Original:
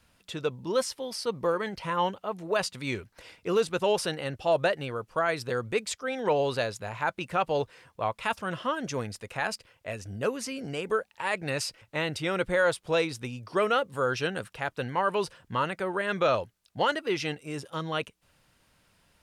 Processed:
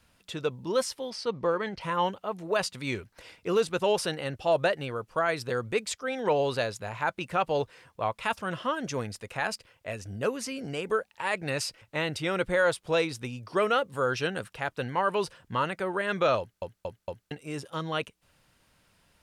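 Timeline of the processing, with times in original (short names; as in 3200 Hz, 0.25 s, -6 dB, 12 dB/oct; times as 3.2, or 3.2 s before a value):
1.1–1.81 LPF 5500 Hz
16.39 stutter in place 0.23 s, 4 plays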